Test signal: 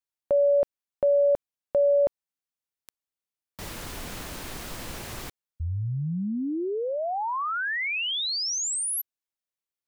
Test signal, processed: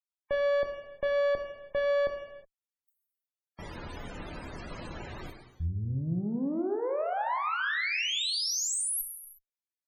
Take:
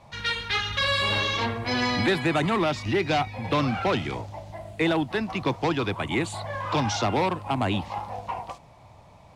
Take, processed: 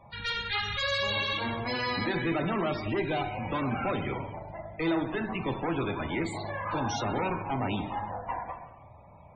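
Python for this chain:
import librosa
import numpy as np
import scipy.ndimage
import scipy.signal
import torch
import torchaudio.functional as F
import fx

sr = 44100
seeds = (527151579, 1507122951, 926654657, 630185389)

y = fx.tube_stage(x, sr, drive_db=27.0, bias=0.6)
y = fx.rev_gated(y, sr, seeds[0], gate_ms=390, shape='falling', drr_db=3.5)
y = fx.spec_topn(y, sr, count=64)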